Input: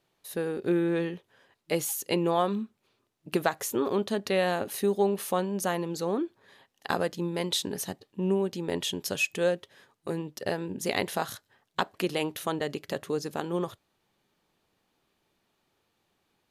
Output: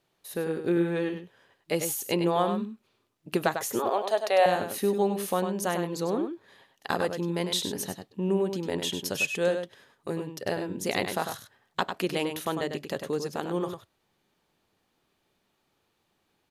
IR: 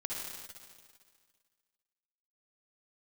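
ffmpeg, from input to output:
-filter_complex "[0:a]asettb=1/sr,asplit=3[link_01][link_02][link_03];[link_01]atrim=end=3.794[link_04];[link_02]atrim=start=3.79:end=4.46,asetpts=PTS-STARTPTS,afade=type=in:duration=0.004:curve=qsin,afade=type=out:start_time=0.666:duration=0.004:curve=qsin,highpass=frequency=690:width_type=q:width=4.9[link_05];[link_03]atrim=start=4.456[link_06];[link_04][link_05]acrossfade=duration=0.004:curve1=hsin:curve2=qsin[link_07];[link_07][link_06]acrossfade=duration=0.004:curve1=qsin:curve2=hsin,asplit=2[link_08][link_09];[link_09]adelay=99.13,volume=-7dB,highshelf=frequency=4000:gain=-2.23[link_10];[link_08][link_10]amix=inputs=2:normalize=0"

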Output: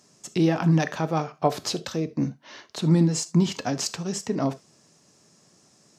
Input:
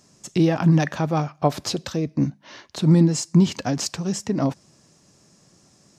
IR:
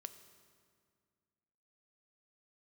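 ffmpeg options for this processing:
-filter_complex "[0:a]highpass=frequency=200:poles=1[link_01];[1:a]atrim=start_sample=2205,atrim=end_sample=3969,asetrate=48510,aresample=44100[link_02];[link_01][link_02]afir=irnorm=-1:irlink=0,volume=5dB"

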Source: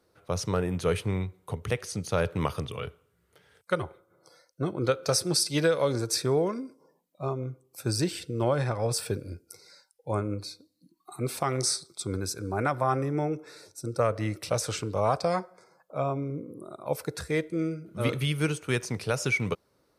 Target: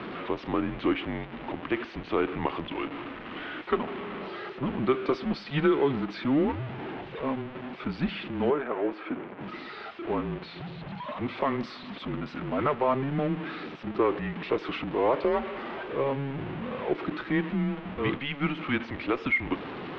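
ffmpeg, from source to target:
ffmpeg -i in.wav -filter_complex "[0:a]aeval=exprs='val(0)+0.5*0.0335*sgn(val(0))':channel_layout=same,highpass=frequency=270:width_type=q:width=0.5412,highpass=frequency=270:width_type=q:width=1.307,lowpass=frequency=3300:width_type=q:width=0.5176,lowpass=frequency=3300:width_type=q:width=0.7071,lowpass=frequency=3300:width_type=q:width=1.932,afreqshift=-140,asettb=1/sr,asplit=3[link_01][link_02][link_03];[link_01]atrim=end=8.504[link_04];[link_02]atrim=start=8.5:end=9.41,asetpts=PTS-STARTPTS,afade=type=in:duration=0.004:curve=qsin,afade=type=out:start_time=0.906:duration=0.004:curve=qsin,acrossover=split=210 2500:gain=0.178 1 0.2[link_05][link_06][link_07];[link_05][link_06][link_07]amix=inputs=3:normalize=0[link_08];[link_03]atrim=start=9.406[link_09];[link_04][link_08]acrossfade=duration=0.004:curve1=hsin:curve2=qsin[link_10];[link_10][link_09]acrossfade=duration=0.004:curve1=qsin:curve2=hsin" out.wav

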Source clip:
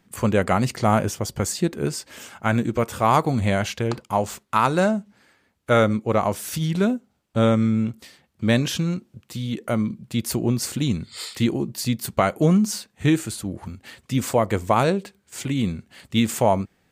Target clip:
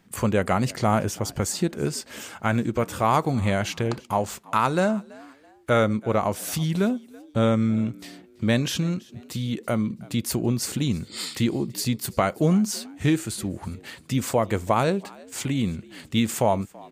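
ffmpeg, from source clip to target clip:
ffmpeg -i in.wav -filter_complex "[0:a]asplit=2[link_01][link_02];[link_02]acompressor=threshold=-29dB:ratio=6,volume=1dB[link_03];[link_01][link_03]amix=inputs=2:normalize=0,asplit=3[link_04][link_05][link_06];[link_05]adelay=331,afreqshift=70,volume=-23dB[link_07];[link_06]adelay=662,afreqshift=140,volume=-32.6dB[link_08];[link_04][link_07][link_08]amix=inputs=3:normalize=0,volume=-4.5dB" out.wav

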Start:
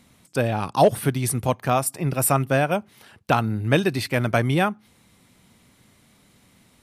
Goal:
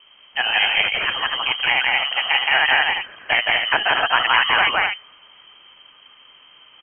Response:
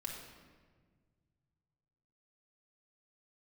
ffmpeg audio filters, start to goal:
-filter_complex "[0:a]afftfilt=real='re*lt(hypot(re,im),0.355)':imag='im*lt(hypot(re,im),0.355)':win_size=1024:overlap=0.75,acontrast=22,adynamicequalizer=threshold=0.0158:dfrequency=1900:dqfactor=0.87:tfrequency=1900:tqfactor=0.87:attack=5:release=100:ratio=0.375:range=3:mode=boostabove:tftype=bell,asplit=2[link_01][link_02];[link_02]aecho=0:1:169.1|244.9:0.891|0.501[link_03];[link_01][link_03]amix=inputs=2:normalize=0,lowpass=frequency=2800:width_type=q:width=0.5098,lowpass=frequency=2800:width_type=q:width=0.6013,lowpass=frequency=2800:width_type=q:width=0.9,lowpass=frequency=2800:width_type=q:width=2.563,afreqshift=-3300,volume=1dB"

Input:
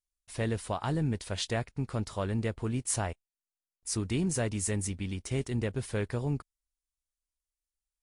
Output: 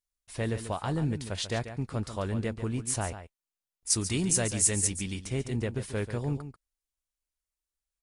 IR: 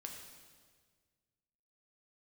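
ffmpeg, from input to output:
-filter_complex "[0:a]asettb=1/sr,asplit=3[link_01][link_02][link_03];[link_01]atrim=end=3.904[link_04];[link_02]atrim=start=3.9:end=5.21,asetpts=PTS-STARTPTS,afade=type=in:duration=0.004:curve=qsin,afade=type=out:start_time=1.306:duration=0.004:curve=qsin,equalizer=frequency=8600:width=0.34:gain=10[link_05];[link_03]atrim=start=5.206[link_06];[link_04][link_05]acrossfade=duration=0.004:curve1=hsin:curve2=qsin[link_07];[link_07][link_06]acrossfade=duration=0.004:curve1=qsin:curve2=hsin,asplit=2[link_08][link_09];[link_09]aecho=0:1:140:0.282[link_10];[link_08][link_10]amix=inputs=2:normalize=0"

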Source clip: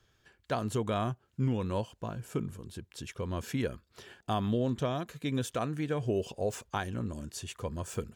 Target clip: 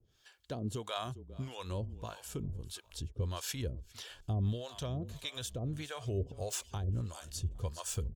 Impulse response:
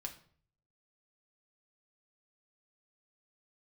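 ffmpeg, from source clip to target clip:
-filter_complex "[0:a]asplit=4[link_01][link_02][link_03][link_04];[link_02]adelay=403,afreqshift=-32,volume=-18.5dB[link_05];[link_03]adelay=806,afreqshift=-64,volume=-26.7dB[link_06];[link_04]adelay=1209,afreqshift=-96,volume=-34.9dB[link_07];[link_01][link_05][link_06][link_07]amix=inputs=4:normalize=0,alimiter=limit=-23dB:level=0:latency=1:release=240,asubboost=boost=7.5:cutoff=81,acrossover=split=550[link_08][link_09];[link_08]aeval=exprs='val(0)*(1-1/2+1/2*cos(2*PI*1.6*n/s))':channel_layout=same[link_10];[link_09]aeval=exprs='val(0)*(1-1/2-1/2*cos(2*PI*1.6*n/s))':channel_layout=same[link_11];[link_10][link_11]amix=inputs=2:normalize=0,highshelf=frequency=2700:width_type=q:width=1.5:gain=6,volume=1dB"

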